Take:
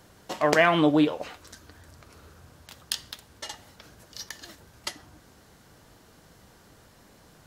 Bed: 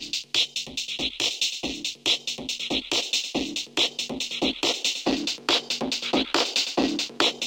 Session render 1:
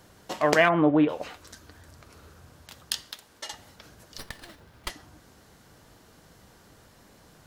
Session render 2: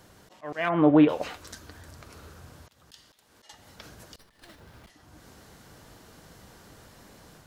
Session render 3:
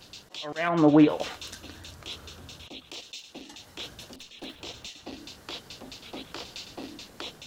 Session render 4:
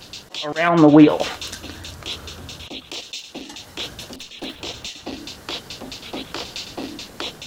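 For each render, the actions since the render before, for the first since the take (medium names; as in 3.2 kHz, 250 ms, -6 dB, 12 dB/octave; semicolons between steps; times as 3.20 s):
0.68–1.08 s: low-pass 1.6 kHz -> 2.7 kHz 24 dB/octave; 3.01–3.52 s: peaking EQ 77 Hz -12 dB 2.5 oct; 4.18–4.90 s: sliding maximum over 5 samples
slow attack 403 ms; level rider gain up to 3.5 dB
add bed -17 dB
trim +9.5 dB; peak limiter -1 dBFS, peak gain reduction 3 dB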